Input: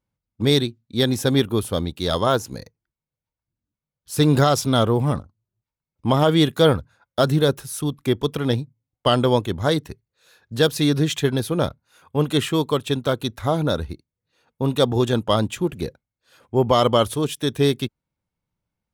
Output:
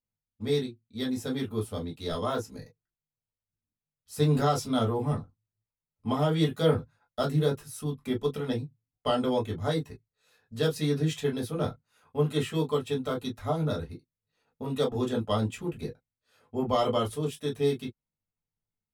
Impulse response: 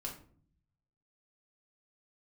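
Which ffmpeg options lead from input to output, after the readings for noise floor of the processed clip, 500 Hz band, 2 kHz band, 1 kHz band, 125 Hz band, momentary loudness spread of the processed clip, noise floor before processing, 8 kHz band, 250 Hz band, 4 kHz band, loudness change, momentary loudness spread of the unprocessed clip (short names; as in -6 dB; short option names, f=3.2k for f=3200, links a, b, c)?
under -85 dBFS, -8.0 dB, -11.0 dB, -8.5 dB, -8.0 dB, 12 LU, under -85 dBFS, -11.5 dB, -8.5 dB, -12.5 dB, -8.5 dB, 10 LU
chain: -filter_complex "[0:a]dynaudnorm=f=420:g=9:m=7dB[a];[1:a]atrim=start_sample=2205,afade=t=out:st=0.13:d=0.01,atrim=end_sample=6174,asetrate=79380,aresample=44100[b];[a][b]afir=irnorm=-1:irlink=0,volume=-7.5dB"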